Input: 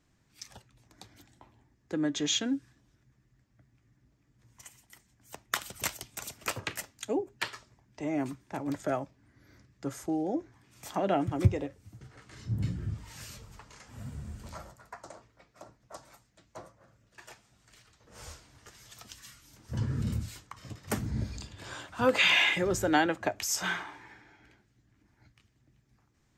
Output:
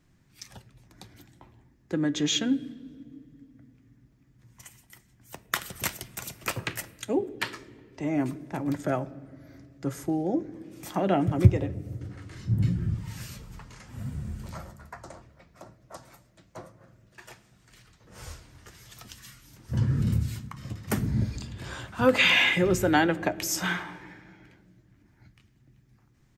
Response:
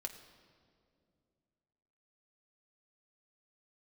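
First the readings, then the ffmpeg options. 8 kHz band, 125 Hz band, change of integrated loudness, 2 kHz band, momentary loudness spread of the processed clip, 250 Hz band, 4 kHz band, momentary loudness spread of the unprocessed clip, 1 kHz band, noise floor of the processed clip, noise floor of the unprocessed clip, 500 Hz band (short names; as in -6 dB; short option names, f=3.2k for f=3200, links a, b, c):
+1.0 dB, +7.0 dB, +3.5 dB, +3.0 dB, 24 LU, +5.0 dB, +2.0 dB, 22 LU, +2.0 dB, -63 dBFS, -70 dBFS, +3.5 dB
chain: -filter_complex "[0:a]asplit=2[a][b];[b]firequalizer=gain_entry='entry(190,0);entry(760,-14);entry(1900,-8);entry(6300,-21);entry(9100,-4)':delay=0.05:min_phase=1[c];[1:a]atrim=start_sample=2205[d];[c][d]afir=irnorm=-1:irlink=0,volume=5.5dB[e];[a][e]amix=inputs=2:normalize=0"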